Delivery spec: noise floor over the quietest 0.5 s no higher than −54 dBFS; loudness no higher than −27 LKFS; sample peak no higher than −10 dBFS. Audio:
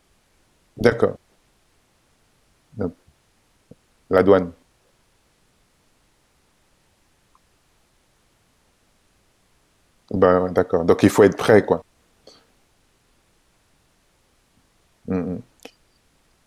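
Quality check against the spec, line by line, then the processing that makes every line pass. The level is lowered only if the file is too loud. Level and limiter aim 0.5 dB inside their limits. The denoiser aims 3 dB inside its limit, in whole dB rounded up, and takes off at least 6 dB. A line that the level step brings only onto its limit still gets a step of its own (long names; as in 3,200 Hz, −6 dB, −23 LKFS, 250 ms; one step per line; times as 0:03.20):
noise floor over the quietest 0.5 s −62 dBFS: in spec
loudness −19.0 LKFS: out of spec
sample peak −2.0 dBFS: out of spec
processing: level −8.5 dB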